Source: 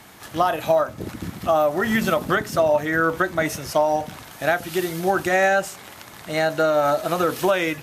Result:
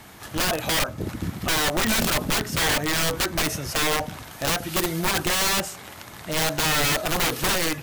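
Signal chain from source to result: wrapped overs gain 17.5 dB; low shelf 100 Hz +8 dB

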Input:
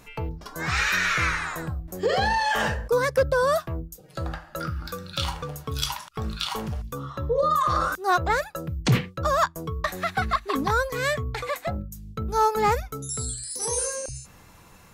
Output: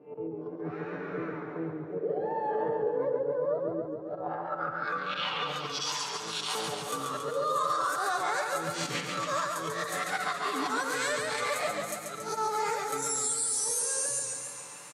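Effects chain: spectral swells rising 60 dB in 0.32 s; low shelf 370 Hz -5.5 dB; auto swell 0.121 s; low-pass sweep 400 Hz -> 8900 Hz, 3.74–6.17; compressor, threshold -27 dBFS, peak gain reduction 11 dB; comb 6.8 ms, depth 62%; limiter -22.5 dBFS, peak gain reduction 7.5 dB; Bessel high-pass 260 Hz, order 4; warbling echo 0.139 s, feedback 65%, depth 94 cents, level -4 dB

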